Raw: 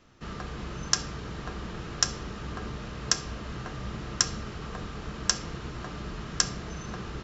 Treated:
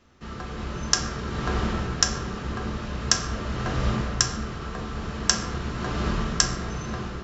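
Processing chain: AGC gain up to 12.5 dB; on a send: reverb RT60 1.6 s, pre-delay 6 ms, DRR 3 dB; on the sum: gain -1 dB

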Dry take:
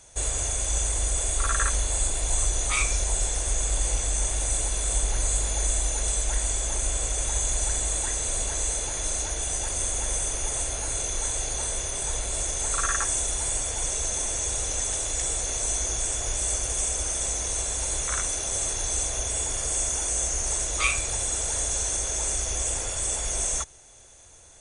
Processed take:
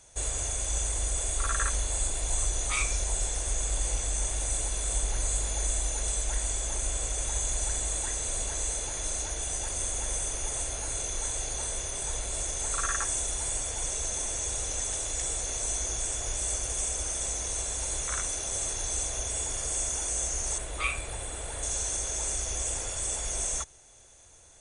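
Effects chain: 20.58–21.63 bell 6100 Hz -14.5 dB 0.81 oct; gain -4 dB

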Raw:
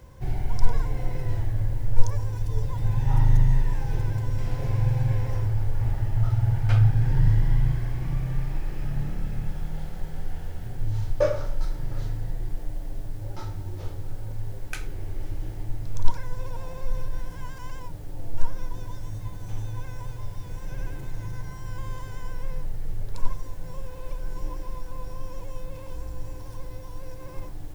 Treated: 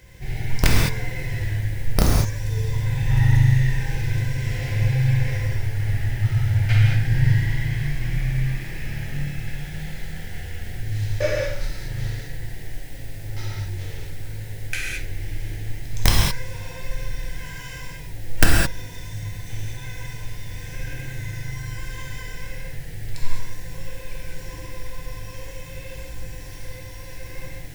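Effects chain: resonant high shelf 1500 Hz +7.5 dB, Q 3; wrapped overs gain 6.5 dB; non-linear reverb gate 0.24 s flat, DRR -4 dB; gain -3 dB

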